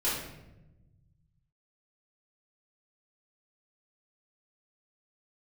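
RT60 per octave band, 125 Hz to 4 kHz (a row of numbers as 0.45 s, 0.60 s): 2.5 s, 1.8 s, 1.1 s, 0.80 s, 0.80 s, 0.60 s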